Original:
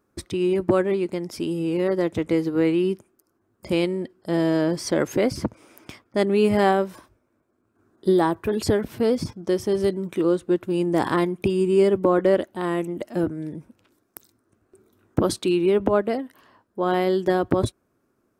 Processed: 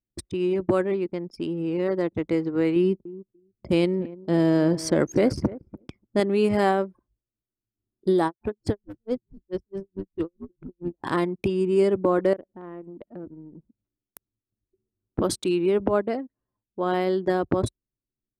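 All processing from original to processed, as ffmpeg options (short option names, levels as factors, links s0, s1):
-filter_complex "[0:a]asettb=1/sr,asplit=3[s0][s1][s2];[s0]atrim=end=2.764[s3];[s1]atrim=start=2.76:end=6.2,asetpts=PTS-STARTPTS,afade=t=in:d=0.004:c=qsin,afade=t=out:st=3.436:d=0.004:c=qsin,lowshelf=f=410:g=6,aecho=1:1:292|584:0.141|0.0339,atrim=end_sample=151704[s4];[s2]atrim=start=6.196[s5];[s3][s4]acrossfade=d=0.004:c1=hsin:c2=qsin[s6];[s6][s5]acrossfade=d=0.004:c1=qsin:c2=hsin,asettb=1/sr,asplit=3[s7][s8][s9];[s7]atrim=end=8.264[s10];[s8]atrim=start=8.26:end=11.04,asetpts=PTS-STARTPTS,afade=t=in:d=0.004:c=qsin,afade=t=out:st=2.776:d=0.004:c=qsin,asplit=7[s11][s12][s13][s14][s15][s16][s17];[s12]adelay=155,afreqshift=-100,volume=0.211[s18];[s13]adelay=310,afreqshift=-200,volume=0.119[s19];[s14]adelay=465,afreqshift=-300,volume=0.0661[s20];[s15]adelay=620,afreqshift=-400,volume=0.0372[s21];[s16]adelay=775,afreqshift=-500,volume=0.0209[s22];[s17]adelay=930,afreqshift=-600,volume=0.0116[s23];[s11][s18][s19][s20][s21][s22][s23]amix=inputs=7:normalize=0,atrim=end_sample=122598,aeval=exprs='val(0)*pow(10,-38*(0.5-0.5*cos(2*PI*4.6*n/s))/20)':c=same[s24];[s9]atrim=start=11.036[s25];[s10][s24]acrossfade=d=0.004:c1=hsin:c2=qsin[s26];[s26][s25]acrossfade=d=0.004:c1=qsin:c2=hsin,asettb=1/sr,asplit=3[s27][s28][s29];[s27]atrim=end=12.334[s30];[s28]atrim=start=12.33:end=15.19,asetpts=PTS-STARTPTS,afade=t=in:d=0.004:c=qsin,afade=t=out:st=2.856:d=0.004:c=qsin,acompressor=threshold=0.0158:ratio=2.5:attack=3.2:release=140:knee=1:detection=peak,aecho=1:1:107:0.0841,atrim=end_sample=126126[s31];[s29]atrim=start=15.186[s32];[s30][s31]acrossfade=d=0.004:c1=hsin:c2=qsin[s33];[s33][s32]acrossfade=d=0.004:c1=qsin:c2=hsin,adynamicequalizer=threshold=0.00282:dfrequency=3300:dqfactor=3.5:tfrequency=3300:tqfactor=3.5:attack=5:release=100:ratio=0.375:range=2:mode=cutabove:tftype=bell,anlmdn=10,equalizer=f=8200:t=o:w=1.4:g=3.5,volume=0.75"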